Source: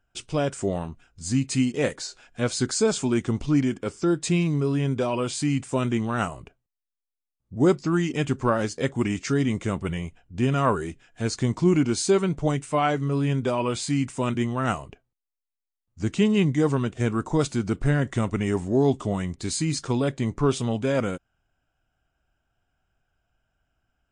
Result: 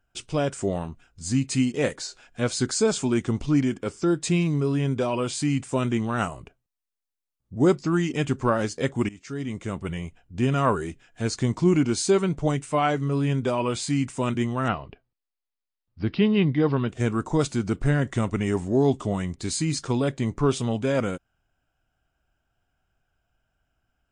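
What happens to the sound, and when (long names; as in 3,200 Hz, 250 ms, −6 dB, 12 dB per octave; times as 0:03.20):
0:09.09–0:10.60: fade in equal-power, from −20.5 dB
0:14.68–0:16.89: Butterworth low-pass 5,100 Hz 96 dB per octave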